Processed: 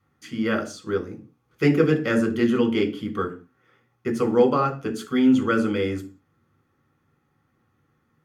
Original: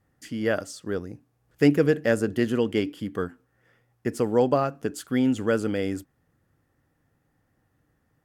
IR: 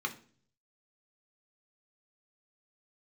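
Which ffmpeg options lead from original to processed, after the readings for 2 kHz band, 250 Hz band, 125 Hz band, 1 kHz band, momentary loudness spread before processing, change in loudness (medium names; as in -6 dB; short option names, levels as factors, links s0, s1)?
+2.5 dB, +3.5 dB, +2.0 dB, +4.5 dB, 12 LU, +2.5 dB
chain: -filter_complex "[1:a]atrim=start_sample=2205,afade=t=out:st=0.25:d=0.01,atrim=end_sample=11466[s0];[0:a][s0]afir=irnorm=-1:irlink=0"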